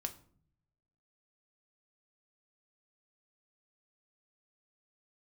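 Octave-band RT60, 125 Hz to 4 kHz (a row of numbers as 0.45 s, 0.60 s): 1.2 s, 0.90 s, 0.60 s, 0.50 s, 0.40 s, 0.35 s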